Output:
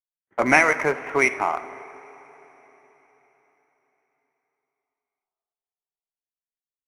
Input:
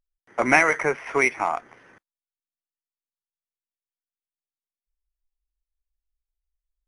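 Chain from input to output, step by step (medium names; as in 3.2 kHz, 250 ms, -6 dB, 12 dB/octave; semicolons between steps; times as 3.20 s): local Wiener filter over 9 samples; gate -52 dBFS, range -38 dB; on a send: tape echo 88 ms, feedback 89%, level -19 dB, low-pass 3.2 kHz; on the sum: two-slope reverb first 0.53 s, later 4.7 s, from -16 dB, DRR 13 dB; trim +1 dB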